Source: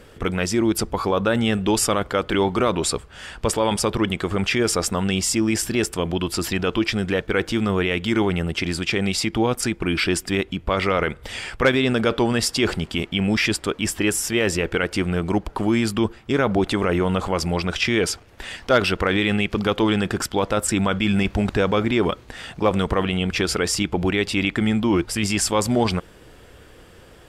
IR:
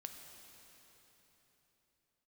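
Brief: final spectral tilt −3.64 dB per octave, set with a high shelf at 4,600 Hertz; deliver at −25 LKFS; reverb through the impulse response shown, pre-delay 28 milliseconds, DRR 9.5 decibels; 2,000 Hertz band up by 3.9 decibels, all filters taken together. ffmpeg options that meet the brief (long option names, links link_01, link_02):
-filter_complex "[0:a]equalizer=frequency=2000:width_type=o:gain=4,highshelf=frequency=4600:gain=4.5,asplit=2[link_01][link_02];[1:a]atrim=start_sample=2205,adelay=28[link_03];[link_02][link_03]afir=irnorm=-1:irlink=0,volume=-5.5dB[link_04];[link_01][link_04]amix=inputs=2:normalize=0,volume=-5dB"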